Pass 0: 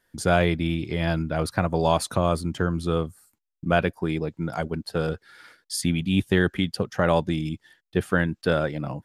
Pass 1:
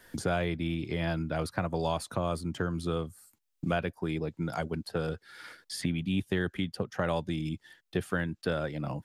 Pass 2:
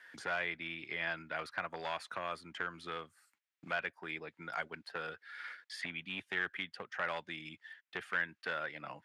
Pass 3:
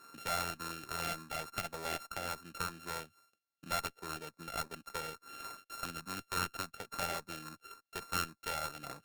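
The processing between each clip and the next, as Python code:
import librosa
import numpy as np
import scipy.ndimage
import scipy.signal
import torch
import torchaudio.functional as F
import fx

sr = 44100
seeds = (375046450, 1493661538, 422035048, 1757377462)

y1 = fx.band_squash(x, sr, depth_pct=70)
y1 = y1 * 10.0 ** (-8.0 / 20.0)
y2 = np.clip(y1, -10.0 ** (-22.5 / 20.0), 10.0 ** (-22.5 / 20.0))
y2 = fx.bandpass_q(y2, sr, hz=1900.0, q=1.7)
y2 = y2 * 10.0 ** (4.0 / 20.0)
y3 = np.r_[np.sort(y2[:len(y2) // 32 * 32].reshape(-1, 32), axis=1).ravel(), y2[len(y2) // 32 * 32:]]
y3 = fx.filter_lfo_notch(y3, sr, shape='square', hz=3.5, low_hz=1000.0, high_hz=3000.0, q=2.4)
y3 = fx.cheby_harmonics(y3, sr, harmonics=(6,), levels_db=(-17,), full_scale_db=-18.5)
y3 = y3 * 10.0 ** (1.0 / 20.0)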